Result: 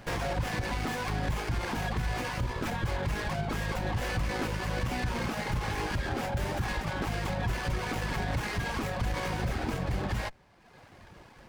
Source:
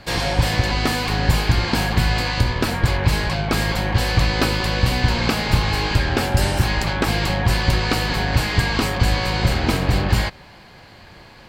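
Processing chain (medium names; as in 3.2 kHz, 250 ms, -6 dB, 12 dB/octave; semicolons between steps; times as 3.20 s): reverb removal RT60 0.99 s; peak limiter -16.5 dBFS, peak gain reduction 11 dB; sliding maximum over 9 samples; trim -5 dB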